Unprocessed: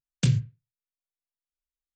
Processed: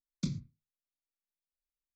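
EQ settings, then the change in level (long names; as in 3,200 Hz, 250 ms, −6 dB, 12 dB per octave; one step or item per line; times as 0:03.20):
high-shelf EQ 3,800 Hz −8.5 dB
phaser with its sweep stopped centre 450 Hz, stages 6
phaser with its sweep stopped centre 2,900 Hz, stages 6
−1.5 dB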